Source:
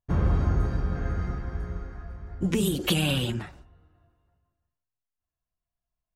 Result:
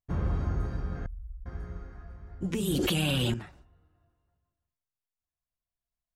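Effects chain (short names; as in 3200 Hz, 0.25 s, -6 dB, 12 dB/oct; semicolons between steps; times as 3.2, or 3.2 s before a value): 1.06–1.46 inverse Chebyshev band-stop 110–6400 Hz, stop band 40 dB; 2.68–3.34 fast leveller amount 100%; gain -6 dB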